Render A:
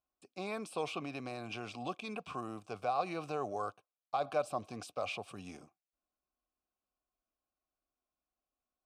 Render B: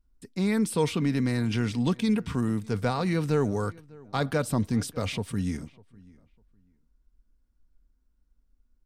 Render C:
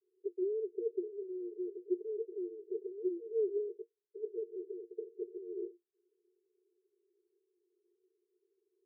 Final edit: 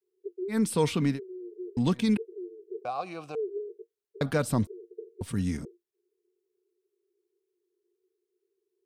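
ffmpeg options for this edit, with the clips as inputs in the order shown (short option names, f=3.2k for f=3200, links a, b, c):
-filter_complex "[1:a]asplit=4[a][b][c][d];[2:a]asplit=6[e][f][g][h][i][j];[e]atrim=end=0.58[k];[a]atrim=start=0.48:end=1.2[l];[f]atrim=start=1.1:end=1.772[m];[b]atrim=start=1.768:end=2.172[n];[g]atrim=start=2.168:end=2.852[o];[0:a]atrim=start=2.848:end=3.352[p];[h]atrim=start=3.348:end=4.212[q];[c]atrim=start=4.208:end=4.672[r];[i]atrim=start=4.668:end=5.212[s];[d]atrim=start=5.208:end=5.652[t];[j]atrim=start=5.648[u];[k][l]acrossfade=d=0.1:c1=tri:c2=tri[v];[v][m]acrossfade=d=0.1:c1=tri:c2=tri[w];[w][n]acrossfade=d=0.004:c1=hsin:c2=hsin[x];[x][o]acrossfade=d=0.004:c1=hsin:c2=hsin[y];[y][p]acrossfade=d=0.004:c1=hsin:c2=hsin[z];[z][q]acrossfade=d=0.004:c1=hsin:c2=hsin[aa];[aa][r]acrossfade=d=0.004:c1=hsin:c2=hsin[ab];[ab][s]acrossfade=d=0.004:c1=hsin:c2=hsin[ac];[ac][t]acrossfade=d=0.004:c1=hsin:c2=hsin[ad];[ad][u]acrossfade=d=0.004:c1=hsin:c2=hsin"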